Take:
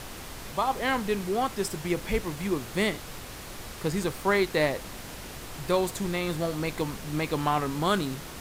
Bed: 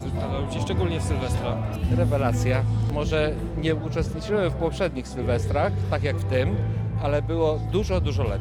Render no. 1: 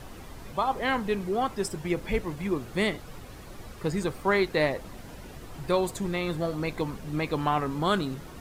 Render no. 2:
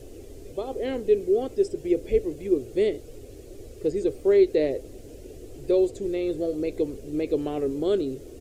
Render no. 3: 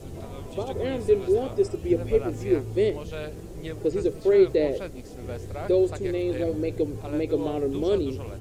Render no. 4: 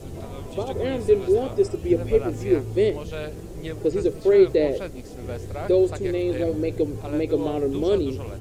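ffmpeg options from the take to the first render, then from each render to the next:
-af "afftdn=nr=10:nf=-41"
-filter_complex "[0:a]acrossover=split=5000[a][b];[b]acompressor=threshold=-59dB:ratio=4:attack=1:release=60[c];[a][c]amix=inputs=2:normalize=0,firequalizer=gain_entry='entry(110,0);entry(170,-14);entry(270,2);entry(410,10);entry(950,-21);entry(2600,-7);entry(3700,-7);entry(7000,4);entry(13000,1)':delay=0.05:min_phase=1"
-filter_complex "[1:a]volume=-12dB[a];[0:a][a]amix=inputs=2:normalize=0"
-af "volume=2.5dB"

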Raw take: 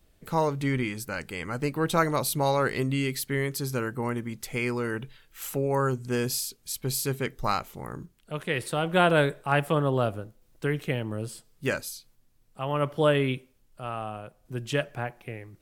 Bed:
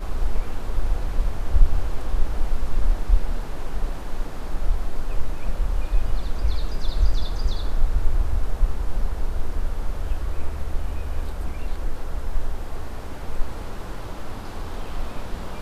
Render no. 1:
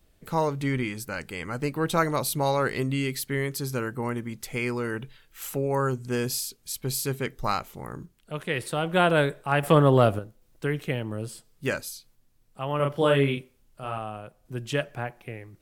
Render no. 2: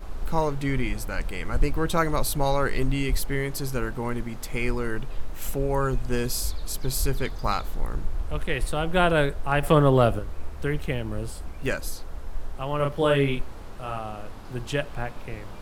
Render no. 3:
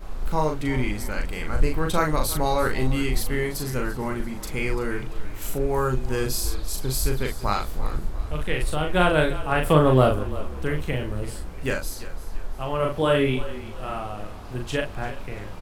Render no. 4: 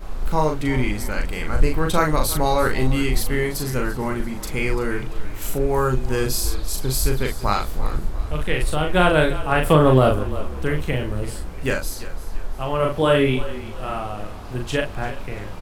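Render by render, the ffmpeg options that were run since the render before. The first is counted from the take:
-filter_complex "[0:a]asettb=1/sr,asplit=3[a][b][c];[a]atrim=end=9.634[d];[b]atrim=start=9.63:end=10.19,asetpts=PTS-STARTPTS,afade=t=in:d=0.004:c=qsin,afade=t=out:st=0.556:d=0.004:c=qsin,acontrast=80[e];[c]atrim=start=10.186[f];[d][e]acrossfade=d=0.004:c1=hsin:c2=qsin[g];[g][f]acrossfade=d=0.004:c1=qsin:c2=hsin,asettb=1/sr,asplit=3[h][i][j];[h]atrim=end=12.764[k];[i]atrim=start=12.76:end=13.98,asetpts=PTS-STARTPTS,afade=t=in:d=0.004:c=qsin,afade=t=out:st=1.216:d=0.004:c=qsin,asplit=2[l][m];[m]adelay=36,volume=-3.5dB[n];[l][n]amix=inputs=2:normalize=0,atrim=end_sample=53802[o];[j]atrim=start=13.976[p];[k][o]acrossfade=d=0.004:c1=hsin:c2=qsin[q];[q][p]acrossfade=d=0.004:c1=qsin:c2=hsin"
-filter_complex "[1:a]volume=-8dB[a];[0:a][a]amix=inputs=2:normalize=0"
-filter_complex "[0:a]asplit=2[a][b];[b]adelay=39,volume=-4dB[c];[a][c]amix=inputs=2:normalize=0,asplit=5[d][e][f][g][h];[e]adelay=341,afreqshift=-34,volume=-15.5dB[i];[f]adelay=682,afreqshift=-68,volume=-22.8dB[j];[g]adelay=1023,afreqshift=-102,volume=-30.2dB[k];[h]adelay=1364,afreqshift=-136,volume=-37.5dB[l];[d][i][j][k][l]amix=inputs=5:normalize=0"
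-af "volume=3.5dB,alimiter=limit=-3dB:level=0:latency=1"

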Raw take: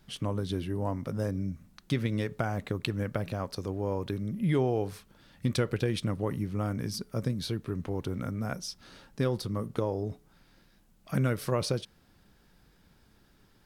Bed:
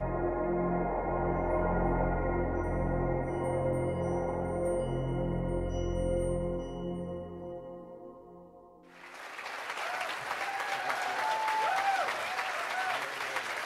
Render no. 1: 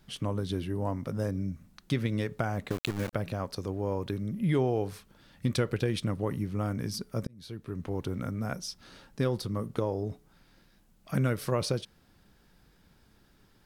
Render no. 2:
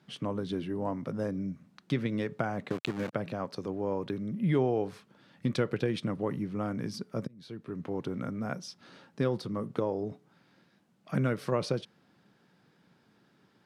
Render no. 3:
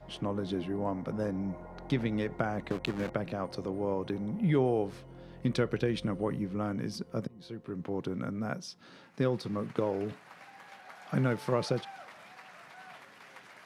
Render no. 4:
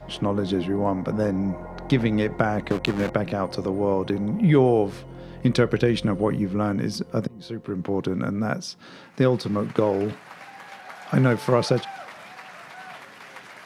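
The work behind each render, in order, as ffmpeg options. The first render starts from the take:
-filter_complex "[0:a]asettb=1/sr,asplit=3[a][b][c];[a]atrim=end=2.704[d];[b]atrim=start=2.7:end=3.13,asetpts=PTS-STARTPTS,afade=t=in:d=0.004:c=qsin,afade=t=out:st=0.426:d=0.004:c=qsin,aeval=exprs='val(0)*gte(abs(val(0)),0.0224)':c=same[e];[c]atrim=start=3.126[f];[d][e]acrossfade=d=0.004:c1=hsin:c2=qsin[g];[g][f]acrossfade=d=0.004:c1=qsin:c2=hsin,asplit=2[h][i];[h]atrim=end=7.27,asetpts=PTS-STARTPTS,afade=t=out:st=7.266:d=0.004:c=hsin[j];[i]atrim=start=7.27,asetpts=PTS-STARTPTS,afade=t=in:d=0.67[k];[j][k]concat=n=2:v=0:a=1"
-af "highpass=f=130:w=0.5412,highpass=f=130:w=1.3066,aemphasis=mode=reproduction:type=50fm"
-filter_complex "[1:a]volume=-17.5dB[a];[0:a][a]amix=inputs=2:normalize=0"
-af "volume=9.5dB"

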